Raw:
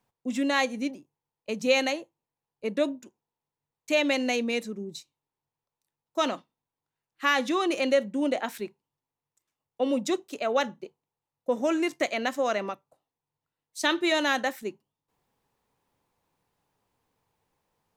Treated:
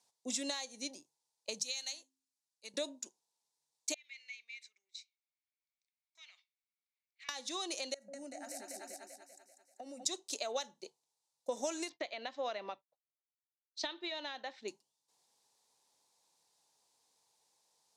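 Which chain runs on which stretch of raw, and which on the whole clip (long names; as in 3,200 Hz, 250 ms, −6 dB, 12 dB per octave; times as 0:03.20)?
0:01.63–0:02.74: guitar amp tone stack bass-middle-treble 5-5-5 + hum removal 88.4 Hz, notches 4
0:03.94–0:07.29: downward compressor 12 to 1, threshold −36 dBFS + four-pole ladder band-pass 2,300 Hz, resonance 85%
0:07.94–0:10.05: echo with a time of its own for lows and highs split 440 Hz, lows 140 ms, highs 194 ms, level −6 dB + downward compressor 12 to 1, threshold −35 dBFS + phaser with its sweep stopped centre 680 Hz, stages 8
0:11.89–0:14.68: low-pass filter 3,500 Hz 24 dB per octave + downward expander −51 dBFS
whole clip: meter weighting curve ITU-R 468; downward compressor 16 to 1, threshold −32 dBFS; flat-topped bell 1,900 Hz −10 dB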